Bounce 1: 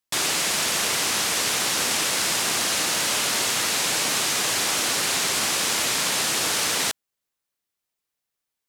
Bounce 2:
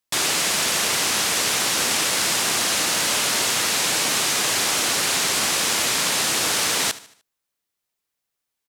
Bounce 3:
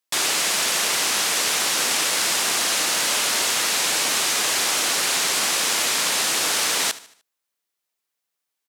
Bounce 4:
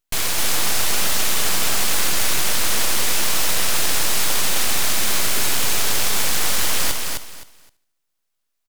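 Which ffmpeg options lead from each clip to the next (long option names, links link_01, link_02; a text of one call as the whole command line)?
ffmpeg -i in.wav -af "aecho=1:1:75|150|225|300:0.133|0.0587|0.0258|0.0114,volume=2dB" out.wav
ffmpeg -i in.wav -af "highpass=frequency=330:poles=1" out.wav
ffmpeg -i in.wav -af "aeval=exprs='abs(val(0))':channel_layout=same,aecho=1:1:260|520|780:0.631|0.139|0.0305,volume=3dB" out.wav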